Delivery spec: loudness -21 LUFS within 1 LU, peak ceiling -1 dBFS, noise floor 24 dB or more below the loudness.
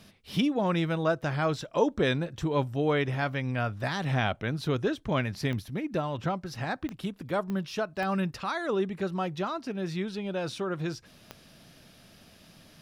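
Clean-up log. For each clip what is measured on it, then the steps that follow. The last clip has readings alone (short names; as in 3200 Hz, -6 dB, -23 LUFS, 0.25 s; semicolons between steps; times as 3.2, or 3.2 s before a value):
clicks 5; loudness -30.0 LUFS; peak -12.5 dBFS; loudness target -21.0 LUFS
-> de-click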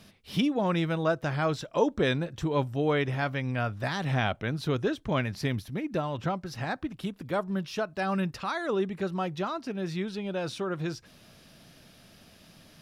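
clicks 0; loudness -30.0 LUFS; peak -12.5 dBFS; loudness target -21.0 LUFS
-> gain +9 dB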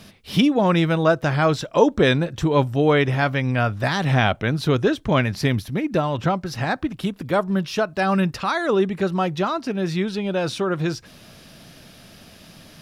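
loudness -21.0 LUFS; peak -3.5 dBFS; noise floor -47 dBFS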